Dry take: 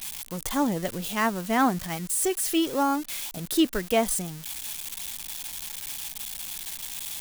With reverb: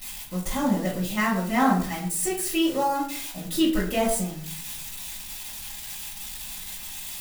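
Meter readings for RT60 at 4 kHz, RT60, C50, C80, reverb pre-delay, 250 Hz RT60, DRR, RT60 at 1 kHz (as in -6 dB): 0.40 s, 0.55 s, 6.5 dB, 10.5 dB, 3 ms, 0.80 s, -10.5 dB, 0.55 s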